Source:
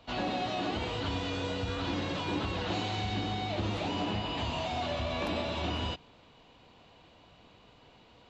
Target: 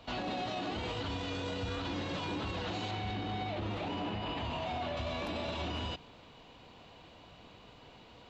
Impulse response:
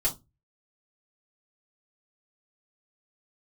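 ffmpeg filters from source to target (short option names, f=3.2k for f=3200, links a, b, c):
-filter_complex "[0:a]asettb=1/sr,asplit=3[a][b][c];[a]atrim=end=2.914[d];[b]atrim=start=2.91:end=4.97,asetpts=PTS-STARTPTS,afade=t=in:d=0.004:c=qsin,afade=t=out:st=2.056:d=0.004:c=qsin,bass=f=250:g=-1,treble=f=4k:g=-10[e];[c]atrim=start=4.966[f];[d][e]acrossfade=d=0.004:c1=hsin:c2=qsin[g];[g][f]acrossfade=d=0.004:c1=qsin:c2=hsin,alimiter=level_in=8dB:limit=-24dB:level=0:latency=1:release=40,volume=-8dB,volume=3dB"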